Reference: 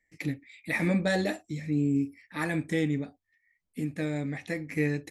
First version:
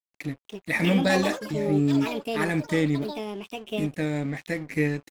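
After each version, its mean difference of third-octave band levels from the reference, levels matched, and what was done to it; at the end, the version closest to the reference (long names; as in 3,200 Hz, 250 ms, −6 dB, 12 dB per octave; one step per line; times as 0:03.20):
6.5 dB: automatic gain control gain up to 4.5 dB
dead-zone distortion −44 dBFS
delay with pitch and tempo change per echo 349 ms, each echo +6 semitones, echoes 3, each echo −6 dB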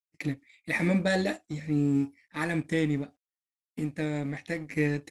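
2.0 dB: mu-law and A-law mismatch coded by A
downward expander −54 dBFS
low-pass filter 11,000 Hz 24 dB per octave
level +1.5 dB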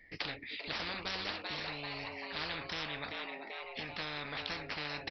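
14.0 dB: on a send: echo with shifted repeats 389 ms, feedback 42%, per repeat +130 Hz, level −16 dB
on the sum: downsampling to 11,025 Hz
every bin compressed towards the loudest bin 10 to 1
level −5.5 dB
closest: second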